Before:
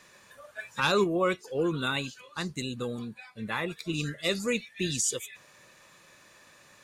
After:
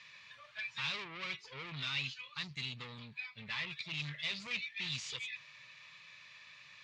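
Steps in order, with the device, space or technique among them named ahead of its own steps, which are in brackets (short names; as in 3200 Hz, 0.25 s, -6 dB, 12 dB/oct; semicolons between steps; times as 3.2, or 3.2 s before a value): scooped metal amplifier (tube stage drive 37 dB, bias 0.5; speaker cabinet 110–4300 Hz, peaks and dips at 140 Hz +7 dB, 270 Hz +7 dB, 530 Hz -6 dB, 760 Hz -9 dB, 1500 Hz -8 dB, 2300 Hz +5 dB; passive tone stack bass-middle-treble 10-0-10); gain +8.5 dB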